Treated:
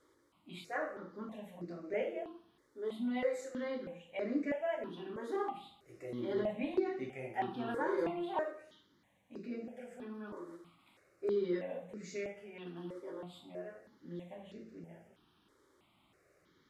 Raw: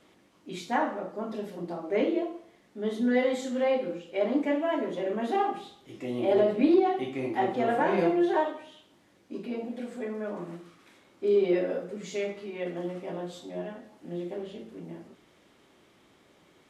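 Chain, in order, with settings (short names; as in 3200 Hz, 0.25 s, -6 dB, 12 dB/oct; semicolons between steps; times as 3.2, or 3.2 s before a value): step phaser 3.1 Hz 720–3200 Hz; gain -6 dB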